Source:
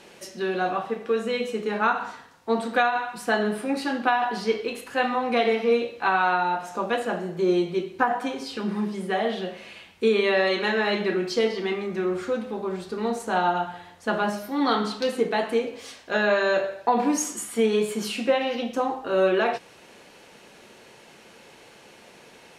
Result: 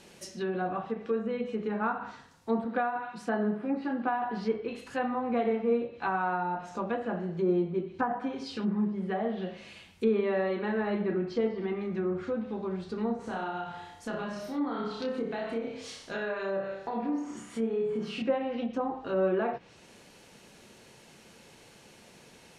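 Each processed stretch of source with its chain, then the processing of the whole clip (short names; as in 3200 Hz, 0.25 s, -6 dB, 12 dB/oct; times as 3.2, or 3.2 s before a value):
2.64–4.14 HPF 120 Hz + high shelf 4900 Hz -9 dB
13.16–18.22 compressor 2.5:1, threshold -29 dBFS + flutter echo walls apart 5.3 m, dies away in 0.53 s
whole clip: tone controls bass +9 dB, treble +6 dB; treble ducked by the level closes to 1400 Hz, closed at -20 dBFS; gain -7 dB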